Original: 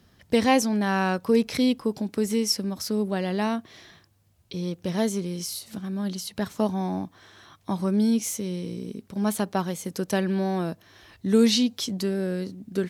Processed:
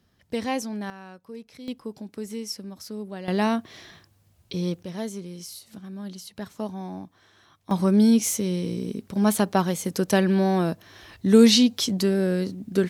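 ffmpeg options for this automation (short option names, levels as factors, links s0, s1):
-af "asetnsamples=n=441:p=0,asendcmd='0.9 volume volume -19.5dB;1.68 volume volume -9dB;3.28 volume volume 3dB;4.83 volume volume -7dB;7.71 volume volume 4.5dB',volume=0.422"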